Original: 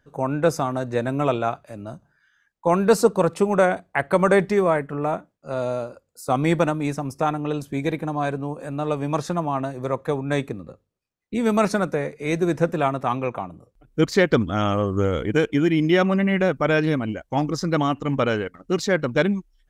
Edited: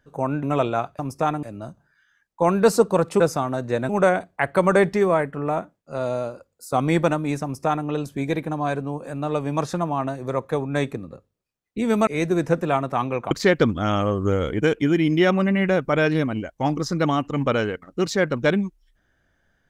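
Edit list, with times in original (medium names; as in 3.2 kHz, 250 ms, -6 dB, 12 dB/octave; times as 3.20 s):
0.43–1.12 s: move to 3.45 s
6.99–7.43 s: copy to 1.68 s
11.63–12.18 s: delete
13.42–14.03 s: delete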